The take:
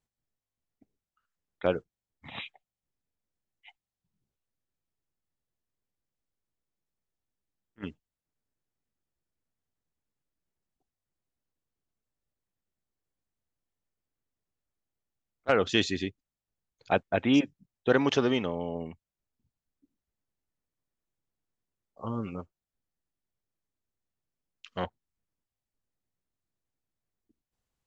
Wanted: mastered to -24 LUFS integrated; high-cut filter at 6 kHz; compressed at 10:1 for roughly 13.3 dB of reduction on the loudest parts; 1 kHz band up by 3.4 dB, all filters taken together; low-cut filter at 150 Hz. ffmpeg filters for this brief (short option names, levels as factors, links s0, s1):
-af "highpass=150,lowpass=6000,equalizer=f=1000:t=o:g=5,acompressor=threshold=0.0282:ratio=10,volume=5.62"